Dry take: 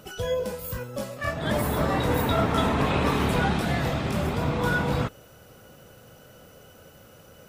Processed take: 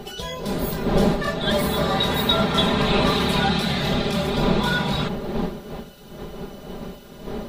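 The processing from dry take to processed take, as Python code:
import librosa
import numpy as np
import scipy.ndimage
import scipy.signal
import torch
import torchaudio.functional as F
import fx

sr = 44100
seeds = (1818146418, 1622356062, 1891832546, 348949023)

y = fx.dmg_wind(x, sr, seeds[0], corner_hz=420.0, level_db=-30.0)
y = fx.peak_eq(y, sr, hz=3900.0, db=11.5, octaves=0.64)
y = y + 0.8 * np.pad(y, (int(5.0 * sr / 1000.0), 0))[:len(y)]
y = fx.quant_dither(y, sr, seeds[1], bits=10, dither='none', at=(3.77, 4.56))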